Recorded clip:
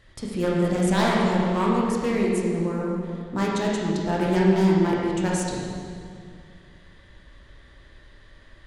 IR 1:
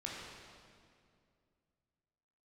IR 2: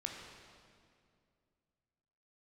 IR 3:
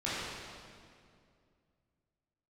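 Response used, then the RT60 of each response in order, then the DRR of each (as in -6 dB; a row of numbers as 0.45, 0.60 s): 1; 2.3, 2.3, 2.3 s; -4.5, 0.5, -10.5 dB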